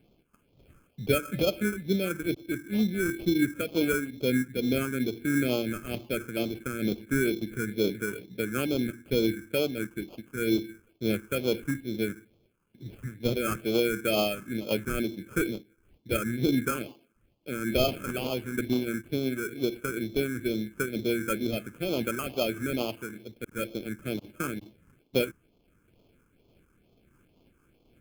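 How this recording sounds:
aliases and images of a low sample rate 1,900 Hz, jitter 0%
phaser sweep stages 4, 2.2 Hz, lowest notch 650–1,600 Hz
amplitude modulation by smooth noise

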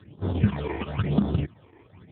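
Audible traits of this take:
chopped level 5.8 Hz, depth 60%, duty 90%
aliases and images of a low sample rate 1,400 Hz, jitter 0%
phaser sweep stages 8, 1 Hz, lowest notch 170–2,400 Hz
AMR narrowband

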